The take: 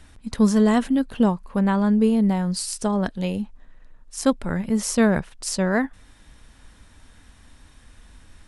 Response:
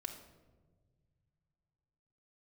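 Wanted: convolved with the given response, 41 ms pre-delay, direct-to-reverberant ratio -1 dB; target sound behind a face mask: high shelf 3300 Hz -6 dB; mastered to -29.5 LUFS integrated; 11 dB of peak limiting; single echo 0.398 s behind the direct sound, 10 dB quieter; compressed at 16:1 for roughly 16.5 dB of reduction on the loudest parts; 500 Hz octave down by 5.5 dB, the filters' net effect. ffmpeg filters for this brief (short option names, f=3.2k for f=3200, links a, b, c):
-filter_complex "[0:a]equalizer=f=500:t=o:g=-6.5,acompressor=threshold=-31dB:ratio=16,alimiter=level_in=4.5dB:limit=-24dB:level=0:latency=1,volume=-4.5dB,aecho=1:1:398:0.316,asplit=2[a][b];[1:a]atrim=start_sample=2205,adelay=41[c];[b][c]afir=irnorm=-1:irlink=0,volume=3dB[d];[a][d]amix=inputs=2:normalize=0,highshelf=f=3.3k:g=-6,volume=6dB"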